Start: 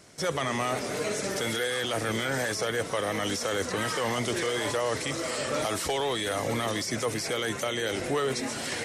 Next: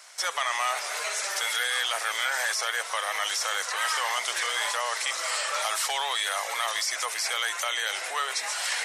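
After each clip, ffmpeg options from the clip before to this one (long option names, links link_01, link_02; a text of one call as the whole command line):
ffmpeg -i in.wav -filter_complex "[0:a]asplit=2[link_01][link_02];[link_02]alimiter=level_in=2.5dB:limit=-24dB:level=0:latency=1:release=402,volume=-2.5dB,volume=-2.5dB[link_03];[link_01][link_03]amix=inputs=2:normalize=0,highpass=frequency=810:width=0.5412,highpass=frequency=810:width=1.3066,volume=2dB" out.wav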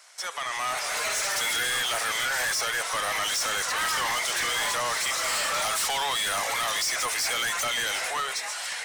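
ffmpeg -i in.wav -af "dynaudnorm=framelen=120:gausssize=13:maxgain=12dB,asoftclip=type=tanh:threshold=-20.5dB,volume=-3.5dB" out.wav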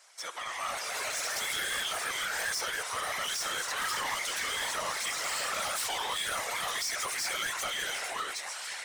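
ffmpeg -i in.wav -af "afftfilt=real='hypot(re,im)*cos(2*PI*random(0))':imag='hypot(re,im)*sin(2*PI*random(1))':win_size=512:overlap=0.75" out.wav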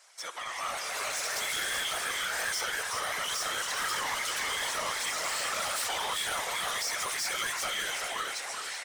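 ffmpeg -i in.wav -af "aecho=1:1:381:0.473" out.wav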